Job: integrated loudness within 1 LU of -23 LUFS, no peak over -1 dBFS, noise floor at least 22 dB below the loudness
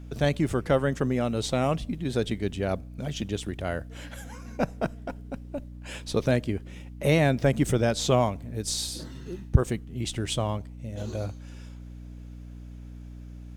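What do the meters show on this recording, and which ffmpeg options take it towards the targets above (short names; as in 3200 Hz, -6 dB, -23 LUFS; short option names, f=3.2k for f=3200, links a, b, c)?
hum 60 Hz; harmonics up to 300 Hz; hum level -41 dBFS; loudness -28.0 LUFS; peak -4.5 dBFS; loudness target -23.0 LUFS
-> -af "bandreject=f=60:t=h:w=6,bandreject=f=120:t=h:w=6,bandreject=f=180:t=h:w=6,bandreject=f=240:t=h:w=6,bandreject=f=300:t=h:w=6"
-af "volume=5dB,alimiter=limit=-1dB:level=0:latency=1"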